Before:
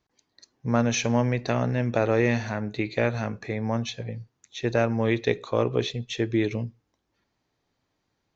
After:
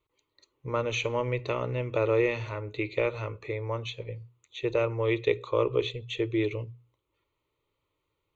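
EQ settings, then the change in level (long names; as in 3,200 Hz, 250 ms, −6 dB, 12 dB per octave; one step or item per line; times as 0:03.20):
mains-hum notches 60/120 Hz
phaser with its sweep stopped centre 1,100 Hz, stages 8
0.0 dB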